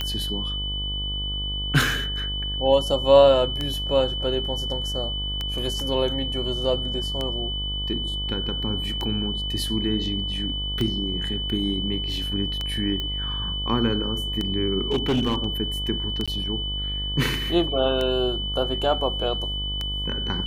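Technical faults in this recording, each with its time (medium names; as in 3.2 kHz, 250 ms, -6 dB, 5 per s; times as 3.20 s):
buzz 50 Hz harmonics 25 -31 dBFS
tick 33 1/3 rpm -13 dBFS
whine 3 kHz -28 dBFS
13.00 s: pop -16 dBFS
14.91–15.45 s: clipped -17.5 dBFS
16.26–16.28 s: dropout 16 ms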